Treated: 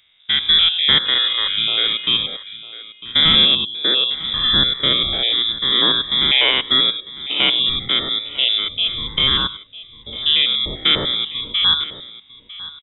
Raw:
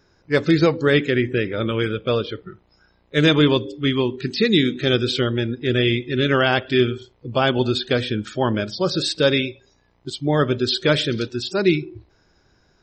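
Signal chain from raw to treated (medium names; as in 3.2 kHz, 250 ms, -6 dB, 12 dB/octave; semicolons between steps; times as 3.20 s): spectrogram pixelated in time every 100 ms; 1.05–2.06 s: mains buzz 400 Hz, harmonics 4, -35 dBFS -4 dB/octave; frequency inversion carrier 3.7 kHz; on a send: delay 951 ms -17 dB; on the sum: trim +3.5 dB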